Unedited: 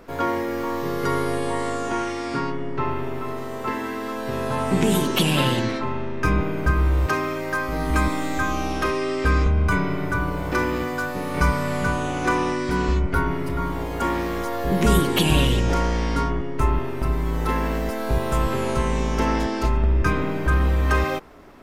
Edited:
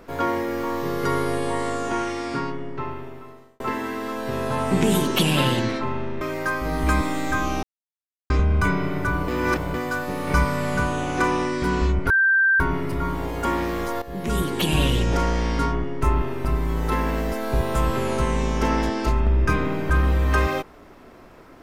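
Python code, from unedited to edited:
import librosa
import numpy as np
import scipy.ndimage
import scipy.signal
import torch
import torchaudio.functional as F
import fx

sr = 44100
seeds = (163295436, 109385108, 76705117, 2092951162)

y = fx.edit(x, sr, fx.fade_out_span(start_s=2.19, length_s=1.41),
    fx.cut(start_s=6.21, length_s=1.07),
    fx.silence(start_s=8.7, length_s=0.67),
    fx.reverse_span(start_s=10.35, length_s=0.46),
    fx.insert_tone(at_s=13.17, length_s=0.5, hz=1570.0, db=-14.5),
    fx.fade_in_from(start_s=14.59, length_s=1.45, curve='qsin', floor_db=-14.0), tone=tone)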